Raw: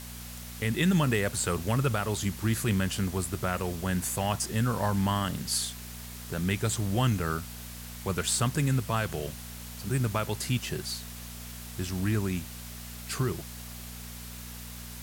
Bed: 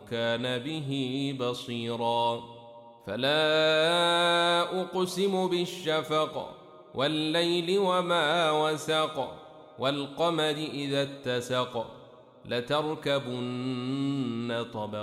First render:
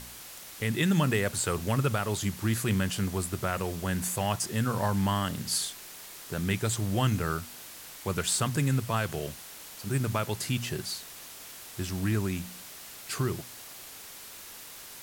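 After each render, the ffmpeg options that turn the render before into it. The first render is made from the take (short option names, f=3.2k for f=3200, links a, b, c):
-af "bandreject=f=60:t=h:w=4,bandreject=f=120:t=h:w=4,bandreject=f=180:t=h:w=4,bandreject=f=240:t=h:w=4"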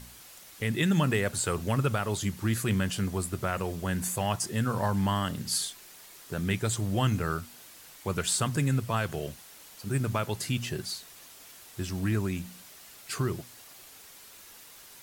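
-af "afftdn=nr=6:nf=-46"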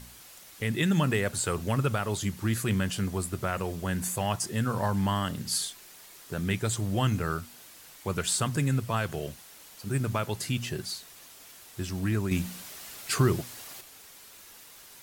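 -filter_complex "[0:a]asettb=1/sr,asplit=3[a][b][c];[a]atrim=end=12.314[d];[b]atrim=start=12.31:end=13.81,asetpts=PTS-STARTPTS,afade=t=in:d=0.004:c=qsin,afade=t=out:st=1.496:d=0.004:c=qsin,acontrast=64[e];[c]atrim=start=13.806[f];[d][e]acrossfade=d=0.004:c1=hsin:c2=qsin[g];[g][f]acrossfade=d=0.004:c1=qsin:c2=hsin"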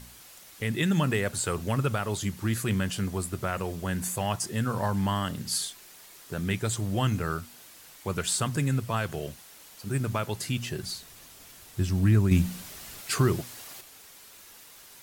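-filter_complex "[0:a]asettb=1/sr,asplit=3[a][b][c];[a]atrim=end=10.834[d];[b]atrim=start=10.83:end=13.01,asetpts=PTS-STARTPTS,afade=t=in:d=0.004:c=qsin,afade=t=out:st=2.176:d=0.004:c=qsin,lowshelf=f=190:g=11.5[e];[c]atrim=start=13.006[f];[d][e]acrossfade=d=0.004:c1=hsin:c2=qsin[g];[g][f]acrossfade=d=0.004:c1=qsin:c2=hsin"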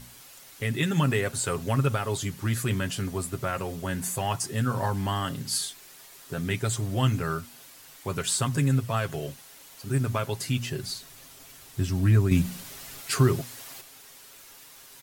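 -af "aecho=1:1:7.4:0.51"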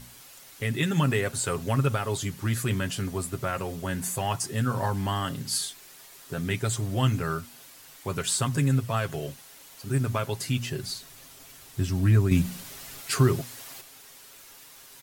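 -af anull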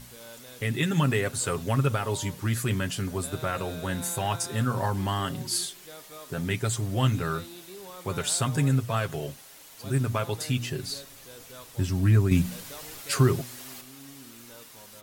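-filter_complex "[1:a]volume=-19dB[a];[0:a][a]amix=inputs=2:normalize=0"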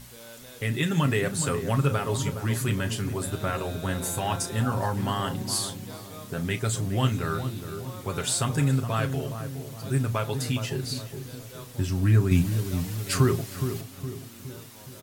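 -filter_complex "[0:a]asplit=2[a][b];[b]adelay=35,volume=-13dB[c];[a][c]amix=inputs=2:normalize=0,asplit=2[d][e];[e]adelay=416,lowpass=f=890:p=1,volume=-7.5dB,asplit=2[f][g];[g]adelay=416,lowpass=f=890:p=1,volume=0.52,asplit=2[h][i];[i]adelay=416,lowpass=f=890:p=1,volume=0.52,asplit=2[j][k];[k]adelay=416,lowpass=f=890:p=1,volume=0.52,asplit=2[l][m];[m]adelay=416,lowpass=f=890:p=1,volume=0.52,asplit=2[n][o];[o]adelay=416,lowpass=f=890:p=1,volume=0.52[p];[d][f][h][j][l][n][p]amix=inputs=7:normalize=0"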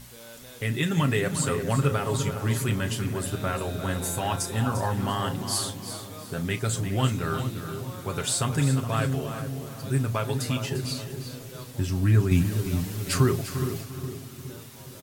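-af "aecho=1:1:348|696|1044:0.282|0.0846|0.0254"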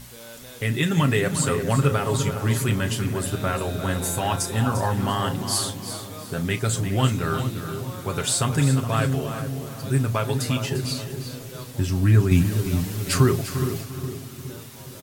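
-af "volume=3.5dB"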